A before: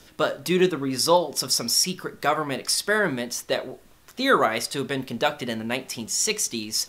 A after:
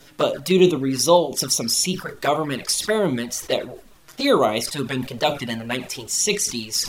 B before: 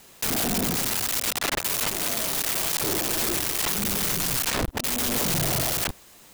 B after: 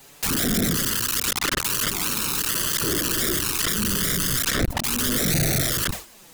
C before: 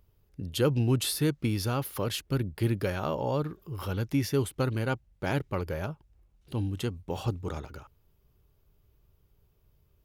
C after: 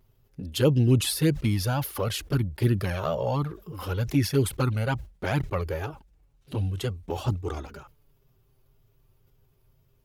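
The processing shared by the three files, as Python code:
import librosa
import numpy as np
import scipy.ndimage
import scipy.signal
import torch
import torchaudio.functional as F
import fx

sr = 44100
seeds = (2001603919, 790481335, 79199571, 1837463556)

y = fx.wow_flutter(x, sr, seeds[0], rate_hz=2.1, depth_cents=57.0)
y = fx.env_flanger(y, sr, rest_ms=7.9, full_db=-20.0)
y = fx.sustainer(y, sr, db_per_s=150.0)
y = y * 10.0 ** (5.5 / 20.0)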